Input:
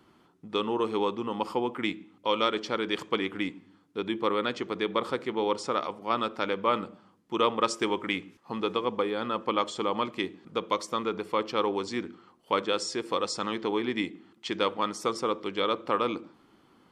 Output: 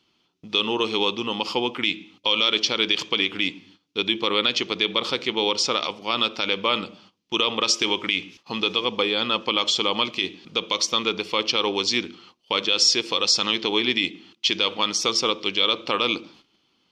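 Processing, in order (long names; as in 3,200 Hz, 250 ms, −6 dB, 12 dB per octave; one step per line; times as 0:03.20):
noise gate −56 dBFS, range −14 dB
flat-topped bell 3,900 Hz +15.5 dB
brickwall limiter −11.5 dBFS, peak gain reduction 10 dB
level +3.5 dB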